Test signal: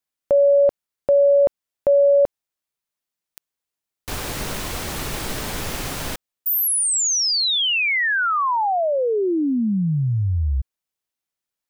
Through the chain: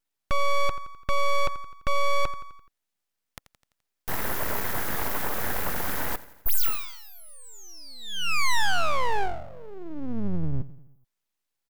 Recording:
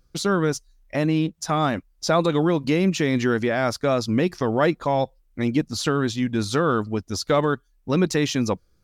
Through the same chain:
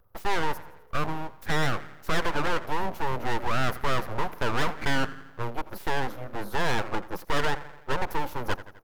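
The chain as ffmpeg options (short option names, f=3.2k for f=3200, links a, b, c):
-filter_complex "[0:a]firequalizer=gain_entry='entry(100,0);entry(160,-11);entry(280,-21);entry(400,5);entry(930,13);entry(2000,-18);entry(3800,-21);entry(7800,-23);entry(12000,7)':delay=0.05:min_phase=1,acrossover=split=230|970[a][b][c];[b]alimiter=limit=-15dB:level=0:latency=1[d];[a][d][c]amix=inputs=3:normalize=0,aecho=1:1:85|170|255|340|425:0.119|0.0666|0.0373|0.0209|0.0117,aeval=exprs='(tanh(6.31*val(0)+0.25)-tanh(0.25))/6.31':c=same,aeval=exprs='abs(val(0))':c=same"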